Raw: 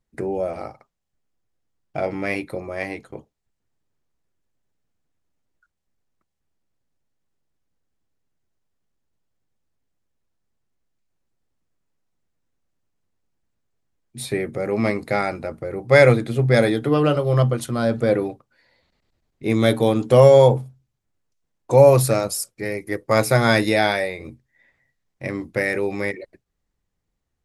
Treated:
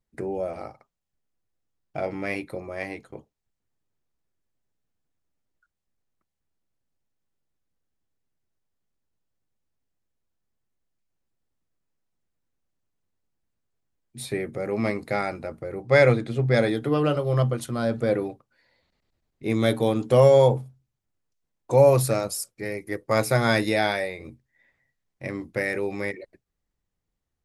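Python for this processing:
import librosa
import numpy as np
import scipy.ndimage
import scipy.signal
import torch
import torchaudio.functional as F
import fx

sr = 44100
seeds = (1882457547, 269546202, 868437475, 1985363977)

y = fx.lowpass(x, sr, hz=7600.0, slope=12, at=(15.82, 16.69))
y = F.gain(torch.from_numpy(y), -4.5).numpy()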